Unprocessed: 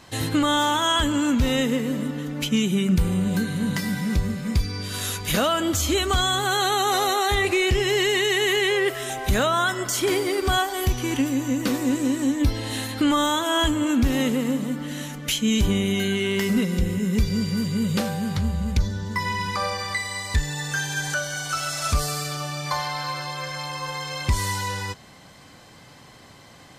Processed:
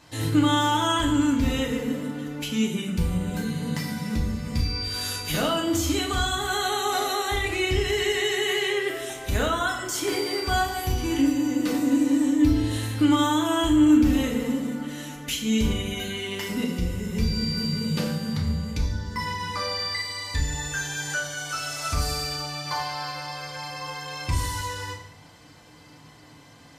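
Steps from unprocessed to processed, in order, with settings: FDN reverb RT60 0.68 s, low-frequency decay 1.5×, high-frequency decay 0.85×, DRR -1 dB; gain -7 dB

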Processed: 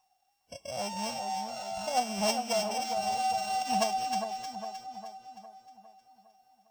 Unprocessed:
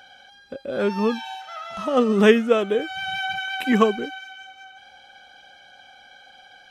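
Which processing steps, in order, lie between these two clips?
sample sorter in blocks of 16 samples; EQ curve 140 Hz 0 dB, 260 Hz -18 dB, 440 Hz -24 dB, 730 Hz +11 dB, 1200 Hz -14 dB, 1800 Hz -15 dB, 2500 Hz -12 dB, 6400 Hz +2 dB, 11000 Hz -13 dB; in parallel at +0.5 dB: compressor, threshold -40 dBFS, peak gain reduction 21 dB; on the sum: added noise white -52 dBFS; spectral noise reduction 25 dB; on a send: split-band echo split 1500 Hz, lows 0.406 s, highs 0.31 s, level -6 dB; on the sum: gain -6.5 dB

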